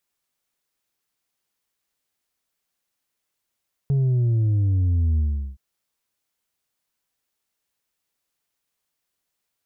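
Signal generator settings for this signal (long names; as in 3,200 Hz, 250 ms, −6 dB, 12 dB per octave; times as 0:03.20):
bass drop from 140 Hz, over 1.67 s, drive 3.5 dB, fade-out 0.39 s, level −17.5 dB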